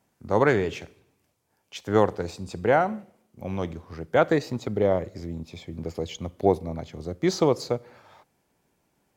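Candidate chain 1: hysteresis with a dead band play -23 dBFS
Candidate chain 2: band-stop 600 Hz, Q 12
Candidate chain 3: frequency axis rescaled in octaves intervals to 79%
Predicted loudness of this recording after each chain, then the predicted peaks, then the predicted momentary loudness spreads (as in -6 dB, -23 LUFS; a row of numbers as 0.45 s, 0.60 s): -26.0 LUFS, -26.5 LUFS, -28.0 LUFS; -6.0 dBFS, -6.0 dBFS, -8.0 dBFS; 19 LU, 15 LU, 15 LU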